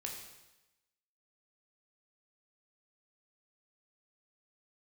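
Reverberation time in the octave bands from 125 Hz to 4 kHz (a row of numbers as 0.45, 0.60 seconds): 1.0, 1.0, 1.0, 1.0, 1.0, 1.0 seconds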